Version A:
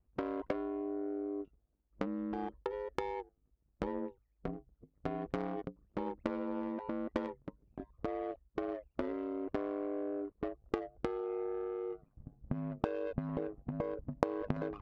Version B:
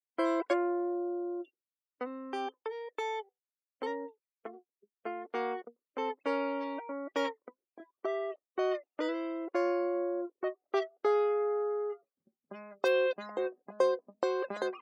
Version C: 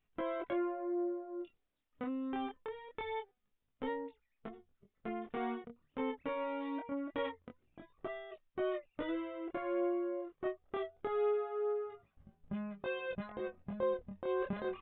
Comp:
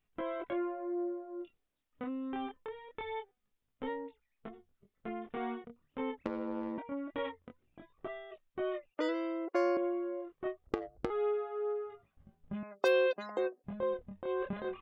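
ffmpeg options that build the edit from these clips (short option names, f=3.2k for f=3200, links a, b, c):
-filter_complex "[0:a]asplit=2[a][b];[1:a]asplit=2[c][d];[2:a]asplit=5[e][f][g][h][i];[e]atrim=end=6.262[j];[a]atrim=start=6.258:end=6.782[k];[f]atrim=start=6.778:end=8.942[l];[c]atrim=start=8.938:end=9.772[m];[g]atrim=start=9.768:end=10.672[n];[b]atrim=start=10.668:end=11.102[o];[h]atrim=start=11.098:end=12.632[p];[d]atrim=start=12.628:end=13.642[q];[i]atrim=start=13.638[r];[j][k]acrossfade=d=0.004:c1=hsin:c2=hsin[s];[s][l]acrossfade=d=0.004:c1=hsin:c2=hsin[t];[t][m]acrossfade=d=0.004:c1=hsin:c2=hsin[u];[u][n]acrossfade=d=0.004:c1=hsin:c2=hsin[v];[v][o]acrossfade=d=0.004:c1=hsin:c2=hsin[w];[w][p]acrossfade=d=0.004:c1=hsin:c2=hsin[x];[x][q]acrossfade=d=0.004:c1=hsin:c2=hsin[y];[y][r]acrossfade=d=0.004:c1=hsin:c2=hsin"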